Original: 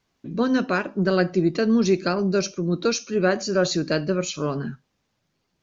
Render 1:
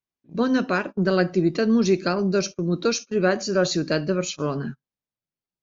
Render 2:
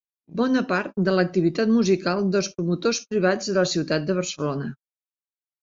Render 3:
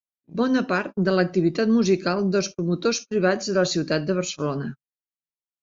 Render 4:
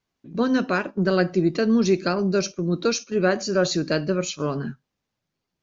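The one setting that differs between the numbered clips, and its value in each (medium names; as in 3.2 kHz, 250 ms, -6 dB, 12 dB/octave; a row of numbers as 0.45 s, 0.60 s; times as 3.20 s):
gate, range: -23 dB, -59 dB, -40 dB, -8 dB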